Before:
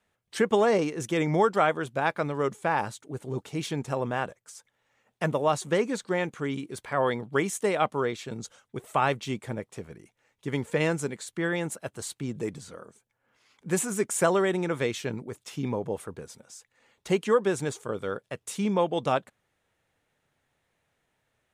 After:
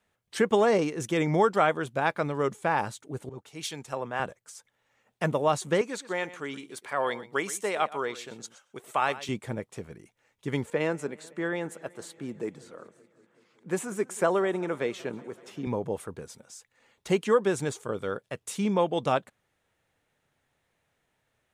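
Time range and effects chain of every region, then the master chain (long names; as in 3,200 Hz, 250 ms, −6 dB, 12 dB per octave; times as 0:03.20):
0:03.29–0:04.20: low-shelf EQ 470 Hz −10 dB + multiband upward and downward expander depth 70%
0:05.81–0:09.29: high-pass filter 600 Hz 6 dB per octave + single-tap delay 120 ms −16 dB
0:10.70–0:15.67: Bessel high-pass filter 250 Hz + high-shelf EQ 2,700 Hz −10 dB + feedback echo with a swinging delay time 189 ms, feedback 74%, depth 100 cents, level −23 dB
whole clip: no processing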